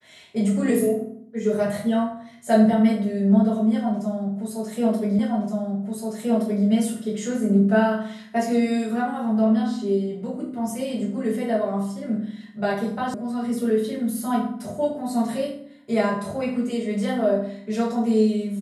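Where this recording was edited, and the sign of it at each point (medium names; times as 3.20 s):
5.19 s: repeat of the last 1.47 s
13.14 s: sound stops dead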